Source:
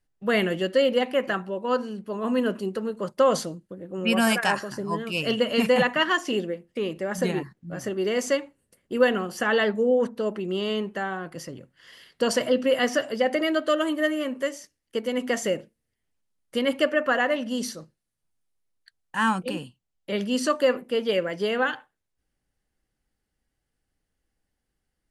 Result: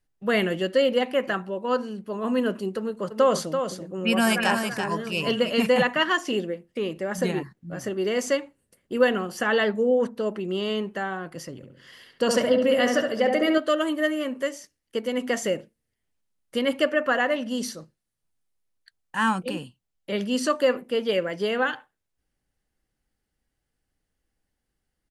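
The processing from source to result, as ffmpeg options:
ffmpeg -i in.wav -filter_complex "[0:a]asplit=3[link_01][link_02][link_03];[link_01]afade=type=out:start_time=3.1:duration=0.02[link_04];[link_02]aecho=1:1:335:0.447,afade=type=in:start_time=3.1:duration=0.02,afade=type=out:start_time=5.49:duration=0.02[link_05];[link_03]afade=type=in:start_time=5.49:duration=0.02[link_06];[link_04][link_05][link_06]amix=inputs=3:normalize=0,asettb=1/sr,asplit=3[link_07][link_08][link_09];[link_07]atrim=end=11.564[link_10];[link_08]atrim=start=11.56:end=13.58,asetpts=PTS-STARTPTS,afade=type=in:duration=0.004:curve=qsin,afade=type=out:start_time=2.016:duration=0.004:curve=qsin,asplit=2[link_11][link_12];[link_12]adelay=69,lowpass=frequency=1800:poles=1,volume=-3.5dB,asplit=2[link_13][link_14];[link_14]adelay=69,lowpass=frequency=1800:poles=1,volume=0.49,asplit=2[link_15][link_16];[link_16]adelay=69,lowpass=frequency=1800:poles=1,volume=0.49,asplit=2[link_17][link_18];[link_18]adelay=69,lowpass=frequency=1800:poles=1,volume=0.49,asplit=2[link_19][link_20];[link_20]adelay=69,lowpass=frequency=1800:poles=1,volume=0.49,asplit=2[link_21][link_22];[link_22]adelay=69,lowpass=frequency=1800:poles=1,volume=0.49[link_23];[link_11][link_13][link_15][link_17][link_19][link_21][link_23]amix=inputs=7:normalize=0,atrim=end_sample=89082[link_24];[link_09]atrim=start=13.576[link_25];[link_10][link_24]acrossfade=duration=0.004:curve1=hsin:curve2=qsin[link_26];[link_26][link_25]acrossfade=duration=0.004:curve1=qsin:curve2=hsin" out.wav

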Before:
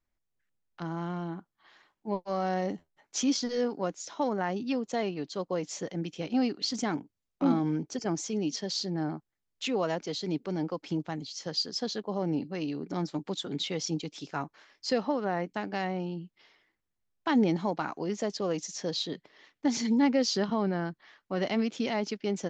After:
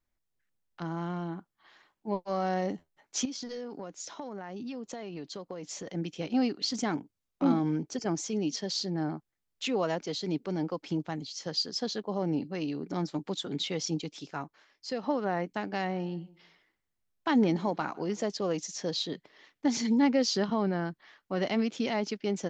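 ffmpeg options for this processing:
ffmpeg -i in.wav -filter_complex "[0:a]asettb=1/sr,asplit=3[link_01][link_02][link_03];[link_01]atrim=end=3.254[link_04];[link_02]atrim=start=3.25:end=5.87,asetpts=PTS-STARTPTS,afade=type=in:duration=0.004:curve=qsin,afade=type=out:start_time=2.616:duration=0.004:curve=qsin,acompressor=threshold=-35dB:ratio=10:attack=3.2:release=140:knee=1:detection=peak[link_05];[link_03]atrim=start=5.866[link_06];[link_04][link_05]acrossfade=duration=0.004:curve1=hsin:curve2=qsin[link_07];[link_07][link_06]acrossfade=duration=0.004:curve1=qsin:curve2=hsin,asettb=1/sr,asplit=3[link_08][link_09][link_10];[link_08]atrim=end=15.604[link_11];[link_09]atrim=start=15.6:end=18.22,asetpts=PTS-STARTPTS,afade=type=in:duration=0.004:curve=qsin,afade=type=out:start_time=2.616:duration=0.004:curve=qsin,asplit=2[link_12][link_13];[link_13]adelay=153,lowpass=frequency=4100:poles=1,volume=-23dB,asplit=2[link_14][link_15];[link_15]adelay=153,lowpass=frequency=4100:poles=1,volume=0.34[link_16];[link_12][link_14][link_16]amix=inputs=3:normalize=0,atrim=end_sample=115542[link_17];[link_10]atrim=start=18.216[link_18];[link_11][link_17]acrossfade=duration=0.004:curve1=hsin:curve2=qsin[link_19];[link_19][link_18]acrossfade=duration=0.004:curve1=qsin:curve2=hsin,asplit=2[link_20][link_21];[link_20]atrim=end=15.03,asetpts=PTS-STARTPTS,afade=type=out:start_time=14.04:duration=0.99:curve=qua:silence=0.473151[link_22];[link_21]atrim=start=15.03,asetpts=PTS-STARTPTS,afade=type=in:duration=0.004:curve=hsin:silence=0.473151[link_23];[link_22][link_23]concat=n=2:v=0:a=1" out.wav

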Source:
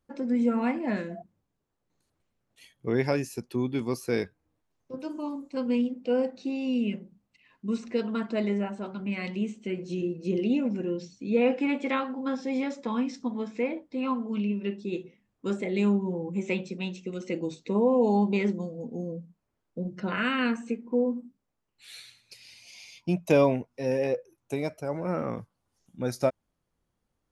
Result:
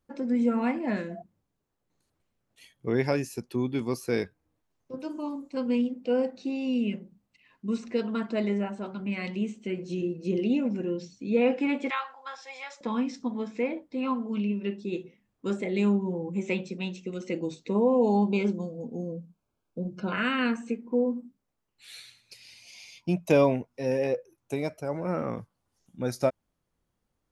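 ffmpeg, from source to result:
ffmpeg -i in.wav -filter_complex "[0:a]asettb=1/sr,asplit=3[link_01][link_02][link_03];[link_01]atrim=end=11.904[link_04];[link_02]atrim=start=11.9:end=12.81,asetpts=PTS-STARTPTS,afade=type=in:duration=0.004:curve=qsin,afade=type=out:start_time=0.906:duration=0.004:curve=qsin,highpass=frequency=800:width=0.5412,highpass=frequency=800:width=1.3066[link_05];[link_03]atrim=start=12.806[link_06];[link_04][link_05]acrossfade=duration=0.004:curve1=hsin:curve2=qsin[link_07];[link_07][link_06]acrossfade=duration=0.004:curve1=qsin:curve2=hsin,asettb=1/sr,asplit=3[link_08][link_09][link_10];[link_08]atrim=end=18.144[link_11];[link_09]atrim=start=18.14:end=20.13,asetpts=PTS-STARTPTS,afade=type=in:duration=0.004:curve=qsin,afade=type=out:start_time=1.986:duration=0.004:curve=qsin,asuperstop=centerf=1900:order=12:qfactor=4.6[link_12];[link_10]atrim=start=20.126[link_13];[link_11][link_12]acrossfade=duration=0.004:curve1=hsin:curve2=qsin[link_14];[link_14][link_13]acrossfade=duration=0.004:curve1=qsin:curve2=hsin" out.wav

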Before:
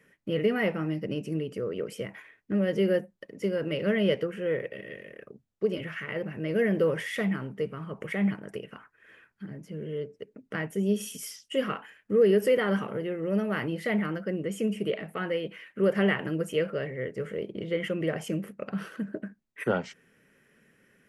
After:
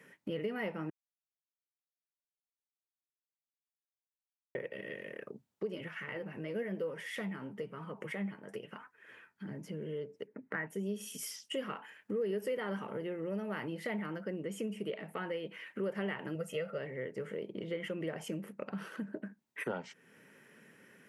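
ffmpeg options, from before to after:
ffmpeg -i in.wav -filter_complex "[0:a]asettb=1/sr,asplit=3[link_01][link_02][link_03];[link_01]atrim=end=5.884[link_04];[link_02]atrim=start=5.88:end=9.46,asetpts=PTS-STARTPTS,afade=type=in:duration=0.004:curve=qsin,afade=type=out:start_time=3.576:duration=0.004:curve=qsin,flanger=delay=3.9:depth=7.9:regen=50:speed=1:shape=sinusoidal[link_05];[link_03]atrim=start=9.456[link_06];[link_04][link_05]acrossfade=duration=0.004:curve1=hsin:curve2=qsin[link_07];[link_07][link_06]acrossfade=duration=0.004:curve1=qsin:curve2=hsin,asettb=1/sr,asplit=3[link_08][link_09][link_10];[link_08]atrim=end=10.274[link_11];[link_09]atrim=start=10.27:end=10.67,asetpts=PTS-STARTPTS,afade=type=in:duration=0.004:curve=qsin,afade=type=out:start_time=0.396:duration=0.004:curve=qsin,highshelf=frequency=2800:width_type=q:width=3:gain=-13.5[link_12];[link_10]atrim=start=10.666[link_13];[link_11][link_12]acrossfade=duration=0.004:curve1=hsin:curve2=qsin[link_14];[link_14][link_13]acrossfade=duration=0.004:curve1=qsin:curve2=hsin,asettb=1/sr,asplit=3[link_15][link_16][link_17];[link_15]atrim=end=16.354[link_18];[link_16]atrim=start=16.35:end=16.78,asetpts=PTS-STARTPTS,afade=type=in:duration=0.004:curve=qsin,afade=type=out:start_time=0.426:duration=0.004:curve=qsin,aecho=1:1:1.5:0.68,atrim=end_sample=18963[link_19];[link_17]atrim=start=16.776[link_20];[link_18][link_19]acrossfade=duration=0.004:curve1=hsin:curve2=qsin[link_21];[link_21][link_20]acrossfade=duration=0.004:curve1=qsin:curve2=hsin,asplit=3[link_22][link_23][link_24];[link_22]atrim=end=0.9,asetpts=PTS-STARTPTS,afade=type=out:start_time=0.896:duration=0.004:curve=hsin[link_25];[link_23]atrim=start=0.9:end=4.55,asetpts=PTS-STARTPTS,volume=0[link_26];[link_24]atrim=start=4.55,asetpts=PTS-STARTPTS,afade=type=in:duration=0.004:curve=hsin[link_27];[link_25][link_26][link_27]concat=n=3:v=0:a=1,highpass=140,equalizer=frequency=910:width_type=o:width=0.22:gain=7.5,acompressor=threshold=-45dB:ratio=2.5,volume=3.5dB" out.wav

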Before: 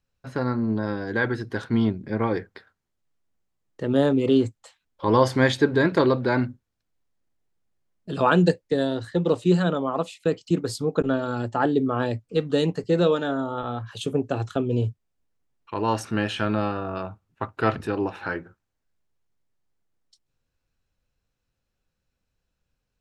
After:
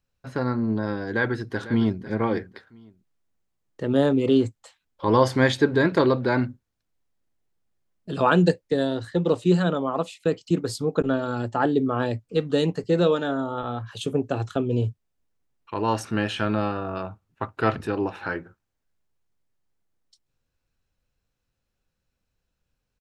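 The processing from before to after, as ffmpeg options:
ffmpeg -i in.wav -filter_complex "[0:a]asplit=2[link_01][link_02];[link_02]afade=type=in:start_time=1.04:duration=0.01,afade=type=out:start_time=2.03:duration=0.01,aecho=0:1:500|1000:0.199526|0.0399052[link_03];[link_01][link_03]amix=inputs=2:normalize=0" out.wav

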